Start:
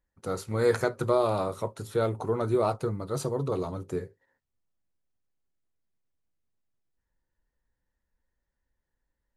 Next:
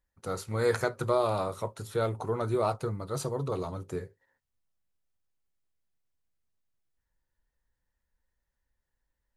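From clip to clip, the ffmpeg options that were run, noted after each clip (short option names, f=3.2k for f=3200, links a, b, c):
-af "equalizer=f=290:w=0.71:g=-4.5"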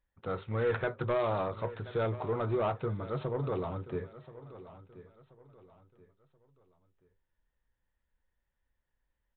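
-af "aresample=8000,asoftclip=type=tanh:threshold=-23.5dB,aresample=44100,aecho=1:1:1030|2060|3090:0.158|0.0539|0.0183"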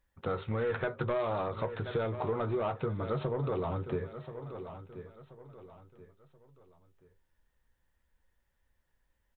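-filter_complex "[0:a]acompressor=threshold=-35dB:ratio=12,asplit=2[a][b];[b]adelay=13,volume=-13dB[c];[a][c]amix=inputs=2:normalize=0,volume=6dB"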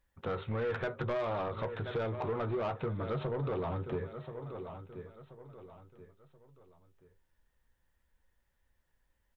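-af "asoftclip=type=tanh:threshold=-27.5dB"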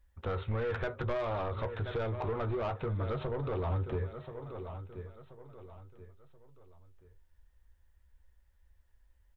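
-af "lowshelf=f=100:t=q:w=1.5:g=10.5"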